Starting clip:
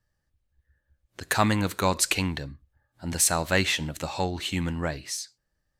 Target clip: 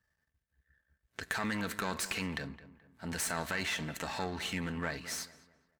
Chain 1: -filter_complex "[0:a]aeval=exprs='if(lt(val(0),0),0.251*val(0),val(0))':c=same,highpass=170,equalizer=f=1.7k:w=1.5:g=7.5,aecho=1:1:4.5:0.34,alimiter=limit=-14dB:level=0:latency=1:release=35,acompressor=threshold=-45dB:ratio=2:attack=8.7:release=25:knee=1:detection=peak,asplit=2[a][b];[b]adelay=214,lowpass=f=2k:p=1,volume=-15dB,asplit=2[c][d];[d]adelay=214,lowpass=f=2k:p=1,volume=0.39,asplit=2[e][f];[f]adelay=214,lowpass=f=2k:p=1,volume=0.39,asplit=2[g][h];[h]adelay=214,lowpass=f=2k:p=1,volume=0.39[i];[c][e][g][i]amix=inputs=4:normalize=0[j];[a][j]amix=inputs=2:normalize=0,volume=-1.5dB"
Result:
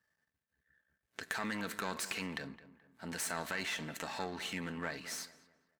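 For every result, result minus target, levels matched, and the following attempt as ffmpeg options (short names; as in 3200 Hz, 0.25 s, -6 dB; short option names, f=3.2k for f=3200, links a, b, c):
compressor: peak gain reduction +3.5 dB; 125 Hz band -3.5 dB
-filter_complex "[0:a]aeval=exprs='if(lt(val(0),0),0.251*val(0),val(0))':c=same,highpass=170,equalizer=f=1.7k:w=1.5:g=7.5,aecho=1:1:4.5:0.34,alimiter=limit=-14dB:level=0:latency=1:release=35,acompressor=threshold=-38.5dB:ratio=2:attack=8.7:release=25:knee=1:detection=peak,asplit=2[a][b];[b]adelay=214,lowpass=f=2k:p=1,volume=-15dB,asplit=2[c][d];[d]adelay=214,lowpass=f=2k:p=1,volume=0.39,asplit=2[e][f];[f]adelay=214,lowpass=f=2k:p=1,volume=0.39,asplit=2[g][h];[h]adelay=214,lowpass=f=2k:p=1,volume=0.39[i];[c][e][g][i]amix=inputs=4:normalize=0[j];[a][j]amix=inputs=2:normalize=0,volume=-1.5dB"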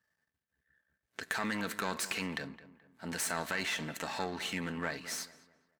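125 Hz band -3.5 dB
-filter_complex "[0:a]aeval=exprs='if(lt(val(0),0),0.251*val(0),val(0))':c=same,highpass=56,equalizer=f=1.7k:w=1.5:g=7.5,aecho=1:1:4.5:0.34,alimiter=limit=-14dB:level=0:latency=1:release=35,acompressor=threshold=-38.5dB:ratio=2:attack=8.7:release=25:knee=1:detection=peak,asplit=2[a][b];[b]adelay=214,lowpass=f=2k:p=1,volume=-15dB,asplit=2[c][d];[d]adelay=214,lowpass=f=2k:p=1,volume=0.39,asplit=2[e][f];[f]adelay=214,lowpass=f=2k:p=1,volume=0.39,asplit=2[g][h];[h]adelay=214,lowpass=f=2k:p=1,volume=0.39[i];[c][e][g][i]amix=inputs=4:normalize=0[j];[a][j]amix=inputs=2:normalize=0,volume=-1.5dB"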